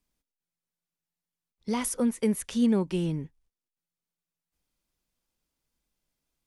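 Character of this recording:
background noise floor −91 dBFS
spectral slope −5.5 dB per octave

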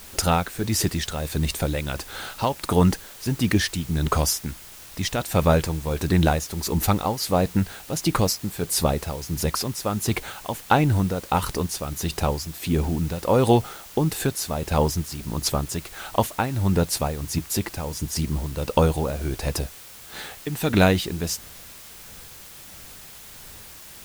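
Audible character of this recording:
tremolo triangle 1.5 Hz, depth 70%
a quantiser's noise floor 8 bits, dither triangular

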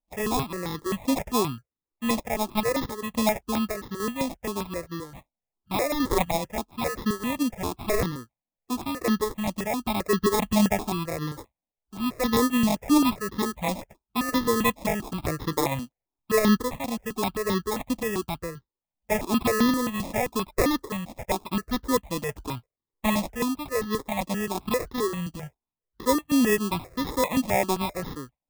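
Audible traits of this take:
sample-and-hold tremolo 3.5 Hz
aliases and images of a low sample rate 1,500 Hz, jitter 0%
notches that jump at a steady rate 7.6 Hz 410–2,400 Hz

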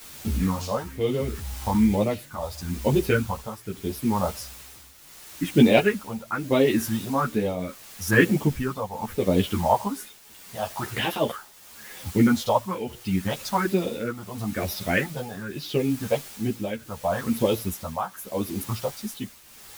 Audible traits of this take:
phaser sweep stages 4, 1.1 Hz, lowest notch 310–1,500 Hz
a quantiser's noise floor 8 bits, dither triangular
tremolo triangle 0.76 Hz, depth 75%
a shimmering, thickened sound

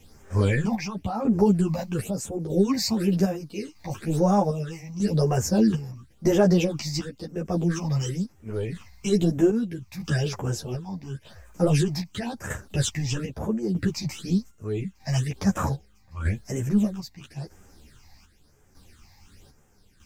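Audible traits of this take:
phaser sweep stages 8, 0.98 Hz, lowest notch 400–4,200 Hz
a quantiser's noise floor 12 bits, dither triangular
chopped level 0.8 Hz, depth 60%, duty 60%
a shimmering, thickened sound

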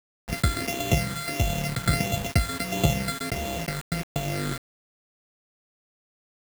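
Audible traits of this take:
a buzz of ramps at a fixed pitch in blocks of 64 samples
phaser sweep stages 8, 1.5 Hz, lowest notch 790–1,600 Hz
a quantiser's noise floor 6 bits, dither none

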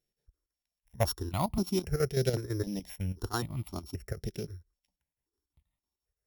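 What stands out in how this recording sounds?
a buzz of ramps at a fixed pitch in blocks of 8 samples
chopped level 6 Hz, depth 65%, duty 75%
notches that jump at a steady rate 3.8 Hz 290–1,600 Hz

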